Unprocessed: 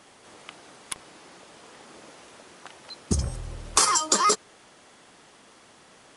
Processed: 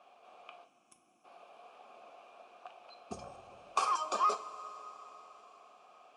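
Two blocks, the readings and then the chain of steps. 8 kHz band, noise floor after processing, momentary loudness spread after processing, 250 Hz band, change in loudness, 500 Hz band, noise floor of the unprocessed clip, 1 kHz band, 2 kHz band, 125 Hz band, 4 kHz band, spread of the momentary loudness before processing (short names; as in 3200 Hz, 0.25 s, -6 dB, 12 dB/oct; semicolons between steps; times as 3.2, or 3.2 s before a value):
-24.5 dB, -70 dBFS, 23 LU, -19.0 dB, -11.5 dB, -9.5 dB, -55 dBFS, -6.0 dB, -13.5 dB, -27.5 dB, -18.5 dB, 19 LU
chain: vowel filter a; spectral gain 0.65–1.25, 380–5200 Hz -20 dB; two-slope reverb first 0.31 s, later 4.8 s, from -18 dB, DRR 6.5 dB; gain +3 dB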